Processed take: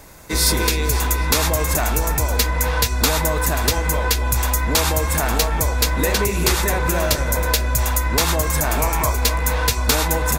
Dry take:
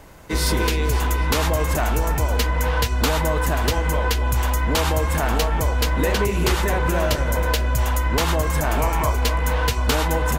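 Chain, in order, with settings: treble shelf 3.4 kHz +10 dB; band-stop 3 kHz, Q 8.8

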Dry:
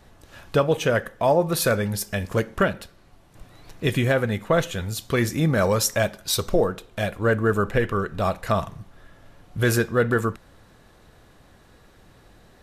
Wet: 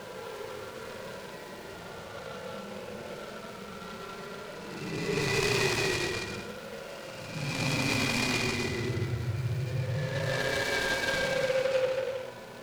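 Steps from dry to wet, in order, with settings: expander on every frequency bin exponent 3; overdrive pedal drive 25 dB, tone 2.9 kHz, clips at -12 dBFS; rippled EQ curve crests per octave 0.78, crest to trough 7 dB; on a send: echo that smears into a reverb 1180 ms, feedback 66%, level -10 dB; on the sum: Paulstretch 21×, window 0.05 s, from 3.61 s; delay time shaken by noise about 1.9 kHz, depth 0.058 ms; trim -8 dB

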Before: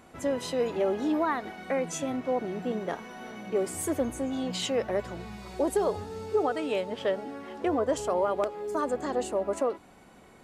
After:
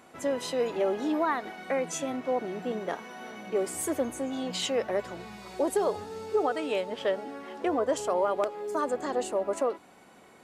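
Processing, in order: high-pass 270 Hz 6 dB/octave; trim +1 dB

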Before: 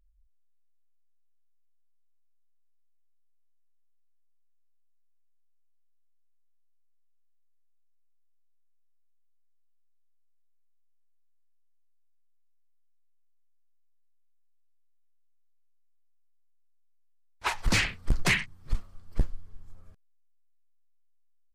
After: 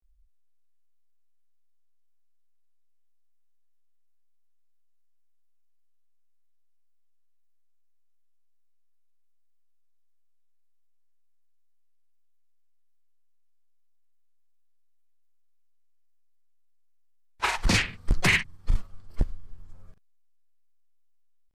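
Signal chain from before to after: granulator 100 ms, grains 20 per s, spray 33 ms, pitch spread up and down by 0 st; trim +3 dB

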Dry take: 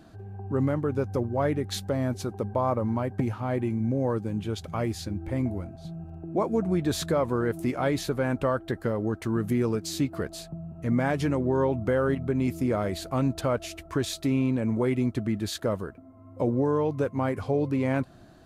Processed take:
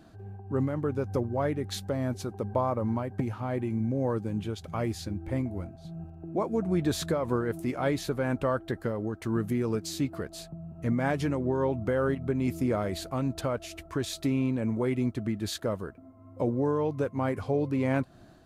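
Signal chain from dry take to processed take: random flutter of the level, depth 60%

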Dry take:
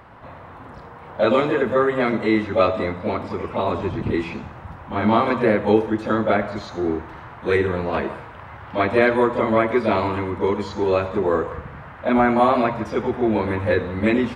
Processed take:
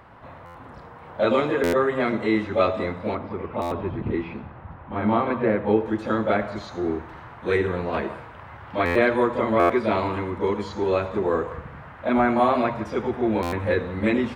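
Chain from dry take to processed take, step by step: 3.15–5.86 s: distance through air 330 m; buffer glitch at 0.45/1.63/3.61/8.85/9.59/13.42 s, samples 512, times 8; trim -3 dB

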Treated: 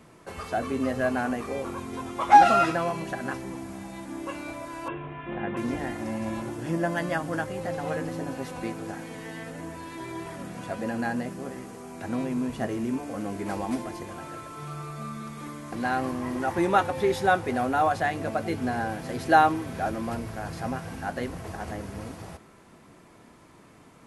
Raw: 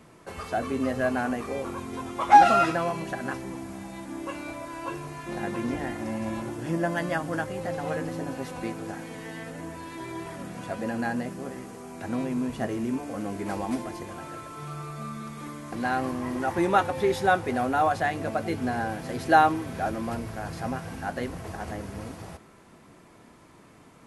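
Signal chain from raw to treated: 4.88–5.57 s: steep low-pass 3.5 kHz 96 dB/octave

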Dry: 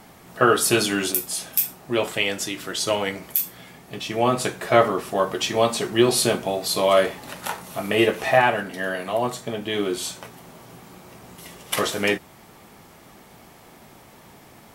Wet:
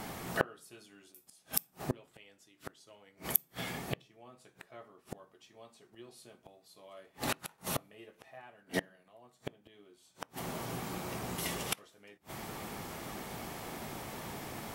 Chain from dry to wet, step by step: inverted gate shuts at -22 dBFS, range -40 dB; on a send: reverberation RT60 0.45 s, pre-delay 3 ms, DRR 22 dB; on the sum: trim +5 dB

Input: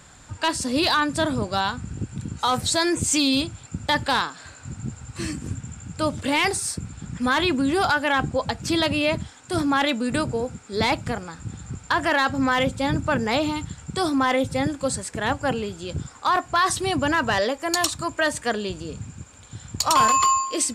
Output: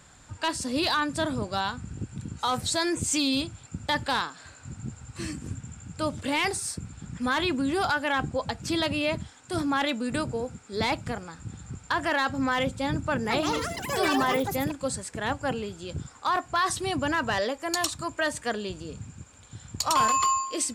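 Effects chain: 13.00–15.20 s: ever faster or slower copies 248 ms, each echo +7 st, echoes 3; trim -5 dB

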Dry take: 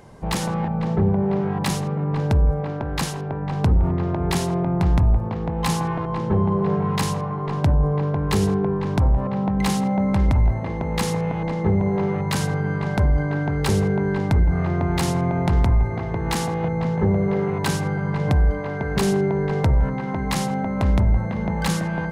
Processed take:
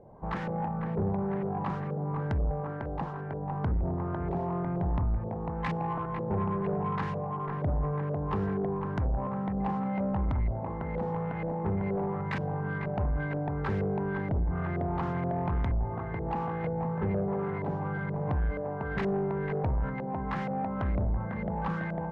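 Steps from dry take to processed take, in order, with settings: LFO low-pass saw up 2.1 Hz 550–2200 Hz; saturation -14 dBFS, distortion -17 dB; trim -9 dB

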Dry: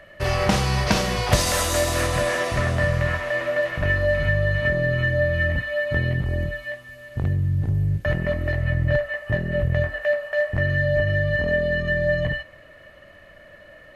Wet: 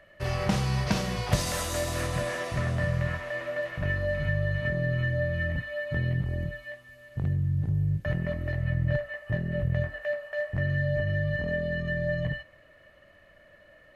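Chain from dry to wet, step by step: dynamic bell 150 Hz, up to +7 dB, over -37 dBFS, Q 1.3; trim -9 dB

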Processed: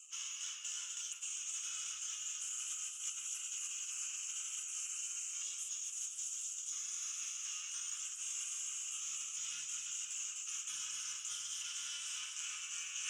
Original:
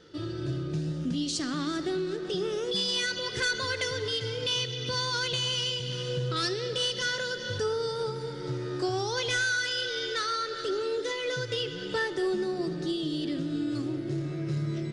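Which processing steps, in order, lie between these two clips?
spectral gate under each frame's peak -30 dB weak; hum notches 50/100 Hz; time-frequency box 6.19–7.67 s, 540–2800 Hz -7 dB; FFT filter 120 Hz 0 dB, 180 Hz -10 dB, 440 Hz -11 dB, 630 Hz -28 dB, 1.1 kHz +2 dB, 1.7 kHz -12 dB, 2.5 kHz +9 dB, 3.8 kHz -19 dB, 5.9 kHz +10 dB, 11 kHz -21 dB; two-band feedback delay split 2.4 kHz, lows 197 ms, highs 290 ms, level -5.5 dB; tape speed +14%; tilt EQ +4 dB/octave; short-mantissa float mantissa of 4-bit; reverse; compression 10:1, threshold -56 dBFS, peak gain reduction 27.5 dB; reverse; trim +15.5 dB

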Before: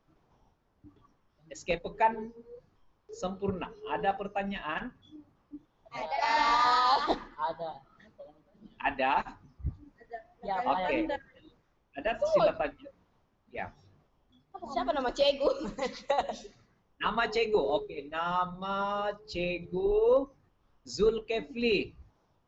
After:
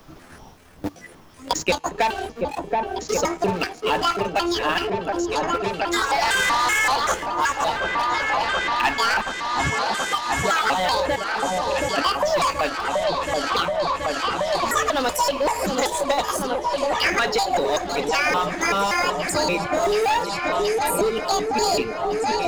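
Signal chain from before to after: pitch shift switched off and on +9.5 st, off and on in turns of 191 ms; treble shelf 4 kHz +9.5 dB; waveshaping leveller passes 3; feedback comb 160 Hz, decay 2 s, mix 30%; on a send: delay with an opening low-pass 727 ms, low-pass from 750 Hz, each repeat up 1 oct, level -6 dB; on the sum: three bands compressed up and down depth 100%; trim +1.5 dB

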